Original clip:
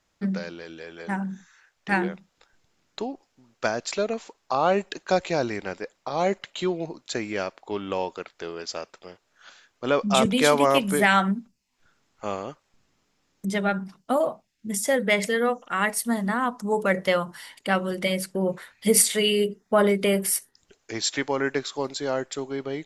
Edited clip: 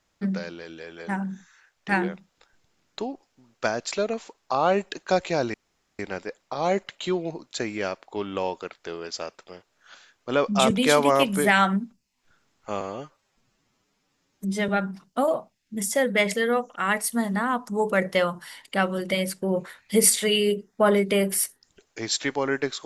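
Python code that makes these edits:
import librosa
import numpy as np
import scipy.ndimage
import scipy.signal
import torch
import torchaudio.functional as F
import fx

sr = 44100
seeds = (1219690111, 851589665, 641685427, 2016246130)

y = fx.edit(x, sr, fx.insert_room_tone(at_s=5.54, length_s=0.45),
    fx.stretch_span(start_s=12.36, length_s=1.25, factor=1.5), tone=tone)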